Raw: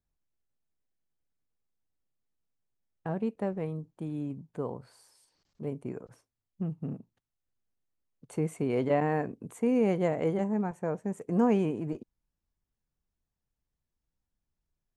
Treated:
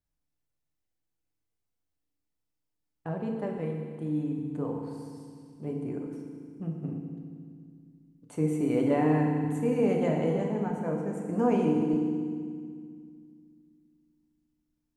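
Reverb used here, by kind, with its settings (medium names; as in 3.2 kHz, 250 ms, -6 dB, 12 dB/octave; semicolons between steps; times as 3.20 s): FDN reverb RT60 2 s, low-frequency decay 1.55×, high-frequency decay 1×, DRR 0 dB; trim -2.5 dB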